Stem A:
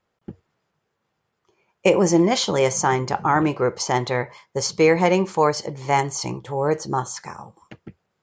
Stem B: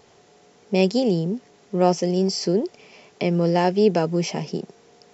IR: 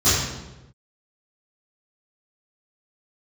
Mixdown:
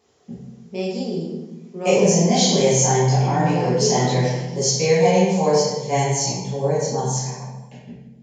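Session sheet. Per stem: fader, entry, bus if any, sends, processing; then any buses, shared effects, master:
−4.0 dB, 0.00 s, send −11.5 dB, phaser with its sweep stopped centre 340 Hz, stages 6
−11.0 dB, 0.00 s, send −17 dB, no processing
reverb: on, RT60 1.0 s, pre-delay 3 ms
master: high-pass filter 210 Hz 6 dB per octave

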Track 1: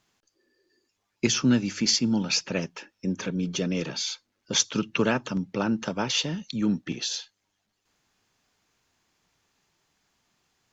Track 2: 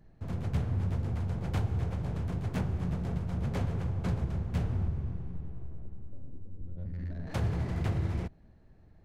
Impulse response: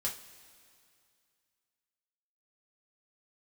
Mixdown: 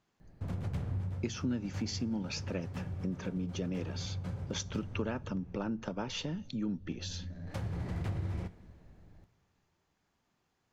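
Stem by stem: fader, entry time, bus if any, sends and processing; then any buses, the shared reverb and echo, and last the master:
−3.0 dB, 0.00 s, send −21 dB, high-shelf EQ 2,000 Hz −11 dB
−1.0 dB, 0.20 s, send −10 dB, automatic ducking −16 dB, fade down 0.25 s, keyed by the first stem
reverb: on, pre-delay 3 ms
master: downward compressor 2.5 to 1, threshold −35 dBFS, peak gain reduction 11 dB

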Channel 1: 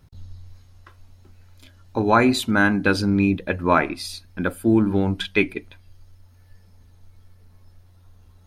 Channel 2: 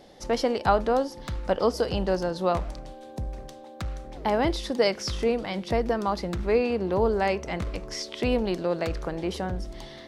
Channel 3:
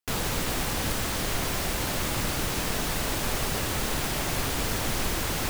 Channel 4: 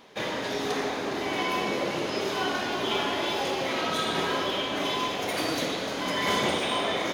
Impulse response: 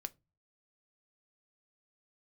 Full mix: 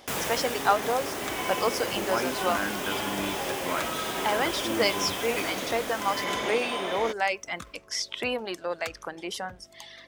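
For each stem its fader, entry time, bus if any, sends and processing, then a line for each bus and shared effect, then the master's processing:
−13.0 dB, 0.00 s, no send, no echo send, no processing
−3.0 dB, 0.00 s, send −4.5 dB, no echo send, reverb reduction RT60 1.5 s; tilt shelving filter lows −6.5 dB, about 830 Hz; mains hum 50 Hz, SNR 25 dB
+2.0 dB, 0.00 s, no send, echo send −11 dB, automatic ducking −11 dB, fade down 0.85 s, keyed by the first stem
−3.5 dB, 0.00 s, no send, no echo send, no processing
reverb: on, RT60 0.25 s, pre-delay 3 ms
echo: repeating echo 745 ms, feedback 16%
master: high-pass filter 280 Hz 6 dB per octave; parametric band 4,200 Hz −6 dB 0.41 octaves

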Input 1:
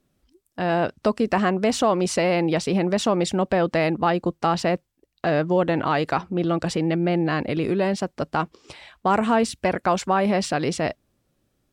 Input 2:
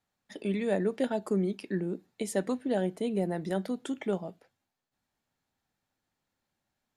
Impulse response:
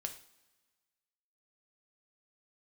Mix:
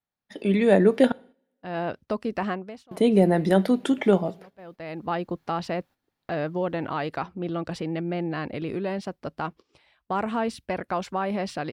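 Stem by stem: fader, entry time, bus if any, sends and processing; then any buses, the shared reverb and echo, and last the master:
−17.5 dB, 1.05 s, no send, automatic ducking −23 dB, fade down 0.40 s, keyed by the second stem
−0.5 dB, 0.00 s, muted 0:01.12–0:02.91, send −11 dB, no processing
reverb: on, pre-delay 3 ms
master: noise gate −56 dBFS, range −10 dB; parametric band 7,400 Hz −8 dB 0.71 octaves; automatic gain control gain up to 10.5 dB

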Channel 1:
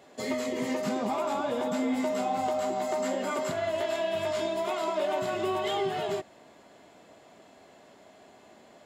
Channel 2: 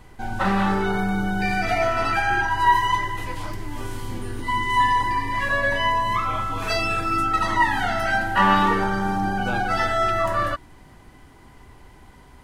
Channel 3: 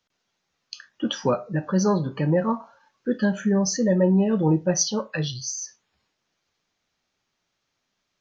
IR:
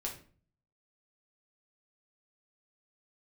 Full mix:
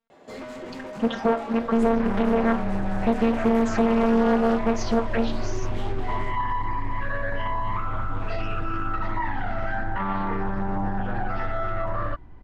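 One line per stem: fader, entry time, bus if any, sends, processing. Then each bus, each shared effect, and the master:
−0.5 dB, 0.10 s, no bus, send −3 dB, soft clipping −36 dBFS, distortion −7 dB
−4.0 dB, 1.60 s, bus A, no send, low-pass filter 6,200 Hz 12 dB per octave; low-shelf EQ 99 Hz +10.5 dB; brickwall limiter −12 dBFS, peak gain reduction 8 dB
+1.5 dB, 0.00 s, bus A, send −19 dB, leveller curve on the samples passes 2; phases set to zero 229 Hz; Bessel low-pass filter 4,800 Hz
bus A: 0.0 dB, high-shelf EQ 3,300 Hz −10.5 dB; downward compressor 3 to 1, threshold −18 dBFS, peak gain reduction 6.5 dB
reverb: on, RT60 0.45 s, pre-delay 5 ms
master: high-shelf EQ 3,300 Hz −11 dB; highs frequency-modulated by the lows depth 0.79 ms

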